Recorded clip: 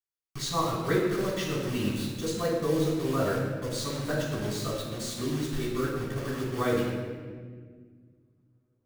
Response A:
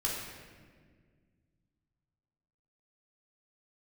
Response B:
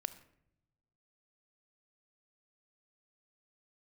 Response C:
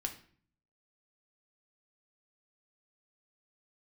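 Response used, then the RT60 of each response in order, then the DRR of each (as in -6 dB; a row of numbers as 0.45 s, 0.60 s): A; 1.7 s, no single decay rate, 0.50 s; -5.5 dB, 12.5 dB, 3.0 dB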